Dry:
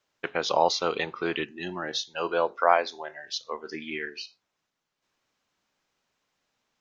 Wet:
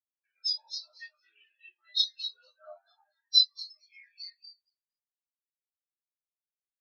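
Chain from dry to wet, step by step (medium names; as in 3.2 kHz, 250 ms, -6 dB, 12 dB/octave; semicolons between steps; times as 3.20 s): compression 5:1, threshold -28 dBFS, peak gain reduction 13 dB; band-pass filter 6.4 kHz, Q 1.4; frequency-shifting echo 234 ms, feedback 44%, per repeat +110 Hz, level -3 dB; reverberation RT60 0.80 s, pre-delay 3 ms, DRR -9 dB; spectral contrast expander 4:1; trim +5.5 dB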